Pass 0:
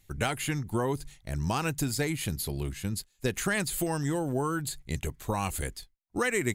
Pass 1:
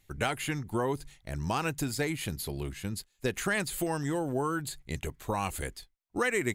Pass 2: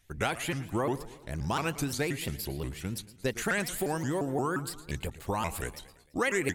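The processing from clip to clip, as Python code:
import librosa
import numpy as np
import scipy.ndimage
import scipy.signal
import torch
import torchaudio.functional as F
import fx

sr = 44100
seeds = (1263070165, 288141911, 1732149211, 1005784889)

y1 = fx.bass_treble(x, sr, bass_db=-4, treble_db=-4)
y2 = fx.echo_feedback(y1, sr, ms=112, feedback_pct=55, wet_db=-16.0)
y2 = fx.vibrato_shape(y2, sr, shape='saw_up', rate_hz=5.7, depth_cents=250.0)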